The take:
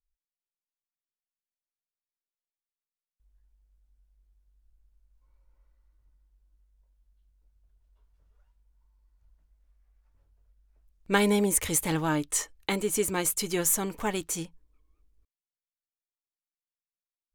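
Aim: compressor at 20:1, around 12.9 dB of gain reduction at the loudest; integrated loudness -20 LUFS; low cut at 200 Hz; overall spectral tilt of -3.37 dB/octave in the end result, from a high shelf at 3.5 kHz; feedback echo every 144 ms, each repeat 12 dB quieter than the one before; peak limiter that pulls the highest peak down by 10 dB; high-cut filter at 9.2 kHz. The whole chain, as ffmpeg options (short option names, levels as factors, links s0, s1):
-af "highpass=200,lowpass=9200,highshelf=f=3500:g=-6,acompressor=threshold=0.0282:ratio=20,alimiter=level_in=1.41:limit=0.0631:level=0:latency=1,volume=0.708,aecho=1:1:144|288|432:0.251|0.0628|0.0157,volume=7.94"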